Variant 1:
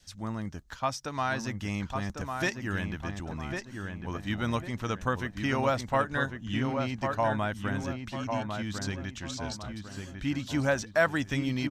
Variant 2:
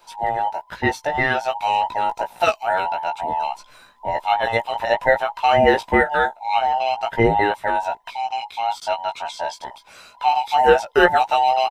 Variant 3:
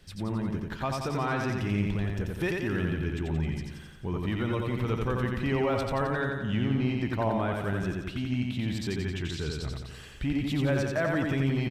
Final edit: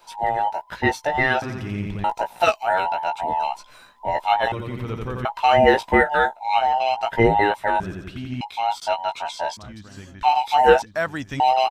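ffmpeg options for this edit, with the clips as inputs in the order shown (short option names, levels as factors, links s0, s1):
-filter_complex "[2:a]asplit=3[s0][s1][s2];[0:a]asplit=2[s3][s4];[1:a]asplit=6[s5][s6][s7][s8][s9][s10];[s5]atrim=end=1.422[s11];[s0]atrim=start=1.418:end=2.042[s12];[s6]atrim=start=2.038:end=4.522[s13];[s1]atrim=start=4.518:end=5.252[s14];[s7]atrim=start=5.248:end=7.802[s15];[s2]atrim=start=7.798:end=8.412[s16];[s8]atrim=start=8.408:end=9.572[s17];[s3]atrim=start=9.568:end=10.232[s18];[s9]atrim=start=10.228:end=10.822[s19];[s4]atrim=start=10.818:end=11.402[s20];[s10]atrim=start=11.398[s21];[s11][s12]acrossfade=d=0.004:c1=hsin:c2=hsin[s22];[s22][s13]acrossfade=d=0.004:c1=hsin:c2=hsin[s23];[s23][s14]acrossfade=d=0.004:c1=hsin:c2=hsin[s24];[s24][s15]acrossfade=d=0.004:c1=hsin:c2=hsin[s25];[s25][s16]acrossfade=d=0.004:c1=hsin:c2=hsin[s26];[s26][s17]acrossfade=d=0.004:c1=hsin:c2=hsin[s27];[s27][s18]acrossfade=d=0.004:c1=hsin:c2=hsin[s28];[s28][s19]acrossfade=d=0.004:c1=hsin:c2=hsin[s29];[s29][s20]acrossfade=d=0.004:c1=hsin:c2=hsin[s30];[s30][s21]acrossfade=d=0.004:c1=hsin:c2=hsin"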